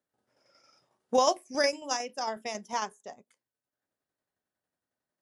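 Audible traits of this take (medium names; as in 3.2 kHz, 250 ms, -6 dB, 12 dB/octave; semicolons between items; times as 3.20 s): tremolo saw down 11 Hz, depth 50%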